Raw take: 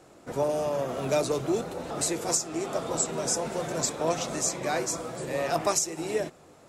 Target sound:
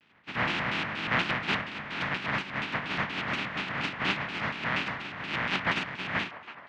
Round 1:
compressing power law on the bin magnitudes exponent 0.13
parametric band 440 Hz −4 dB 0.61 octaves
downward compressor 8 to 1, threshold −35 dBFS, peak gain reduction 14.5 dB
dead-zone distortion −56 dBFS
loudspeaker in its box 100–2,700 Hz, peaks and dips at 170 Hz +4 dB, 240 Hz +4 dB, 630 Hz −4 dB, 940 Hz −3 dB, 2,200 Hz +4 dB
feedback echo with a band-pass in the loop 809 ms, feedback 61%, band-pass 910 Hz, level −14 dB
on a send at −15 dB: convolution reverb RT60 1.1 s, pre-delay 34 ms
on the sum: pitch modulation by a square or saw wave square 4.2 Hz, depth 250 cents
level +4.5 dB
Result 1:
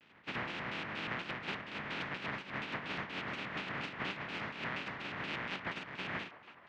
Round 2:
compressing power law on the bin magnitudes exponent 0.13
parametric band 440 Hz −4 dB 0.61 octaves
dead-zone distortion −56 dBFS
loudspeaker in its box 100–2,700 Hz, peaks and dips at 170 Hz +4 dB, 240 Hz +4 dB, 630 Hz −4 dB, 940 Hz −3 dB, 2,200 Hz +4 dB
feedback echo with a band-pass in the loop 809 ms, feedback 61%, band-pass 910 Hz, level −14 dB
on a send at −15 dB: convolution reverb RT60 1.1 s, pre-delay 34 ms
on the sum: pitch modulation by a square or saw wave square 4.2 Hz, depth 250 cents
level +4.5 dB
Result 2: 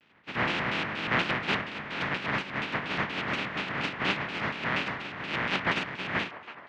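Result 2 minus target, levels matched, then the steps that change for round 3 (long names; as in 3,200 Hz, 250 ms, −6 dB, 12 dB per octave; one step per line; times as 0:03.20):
500 Hz band +2.5 dB
change: parametric band 440 Hz −11 dB 0.61 octaves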